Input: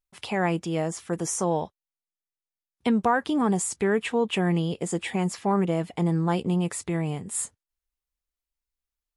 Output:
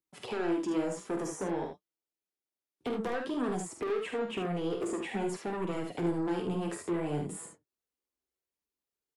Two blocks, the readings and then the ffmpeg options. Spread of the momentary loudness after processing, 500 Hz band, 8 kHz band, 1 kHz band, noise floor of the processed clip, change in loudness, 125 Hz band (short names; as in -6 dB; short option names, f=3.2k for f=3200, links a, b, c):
6 LU, -5.5 dB, -13.5 dB, -10.0 dB, under -85 dBFS, -8.0 dB, -12.0 dB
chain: -filter_complex "[0:a]highpass=93,equalizer=f=360:w=1:g=13.5,acrossover=split=130|590|2000[a][b][c][d];[a]acompressor=threshold=-42dB:ratio=4[e];[b]acompressor=threshold=-26dB:ratio=4[f];[c]acompressor=threshold=-29dB:ratio=4[g];[d]acompressor=threshold=-42dB:ratio=4[h];[e][f][g][h]amix=inputs=4:normalize=0,asplit=2[i][j];[j]aeval=exprs='(mod(4.47*val(0)+1,2)-1)/4.47':c=same,volume=-6dB[k];[i][k]amix=inputs=2:normalize=0,flanger=delay=0.7:depth=9.1:regen=-51:speed=0.23:shape=triangular,asoftclip=type=tanh:threshold=-25dB,flanger=delay=6.1:depth=10:regen=48:speed=0.54:shape=sinusoidal,aecho=1:1:47|74:0.422|0.473"